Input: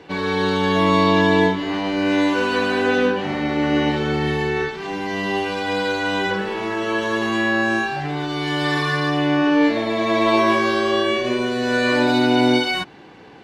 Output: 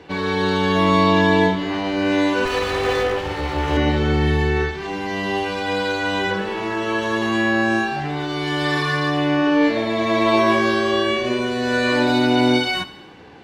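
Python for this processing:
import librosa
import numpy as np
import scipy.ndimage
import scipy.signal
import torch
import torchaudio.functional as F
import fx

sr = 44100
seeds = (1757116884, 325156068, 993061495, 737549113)

y = fx.lower_of_two(x, sr, delay_ms=2.3, at=(2.45, 3.77))
y = fx.peak_eq(y, sr, hz=75.0, db=12.5, octaves=0.34)
y = fx.echo_feedback(y, sr, ms=80, feedback_pct=58, wet_db=-17.0)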